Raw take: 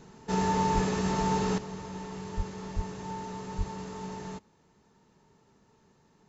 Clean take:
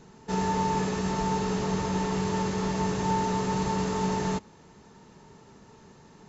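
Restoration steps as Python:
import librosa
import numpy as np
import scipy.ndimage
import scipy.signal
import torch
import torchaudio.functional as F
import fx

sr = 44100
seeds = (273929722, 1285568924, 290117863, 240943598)

y = fx.fix_declip(x, sr, threshold_db=-15.5)
y = fx.fix_deplosive(y, sr, at_s=(0.74, 2.36, 2.75, 3.57))
y = fx.gain(y, sr, db=fx.steps((0.0, 0.0), (1.58, 11.5)))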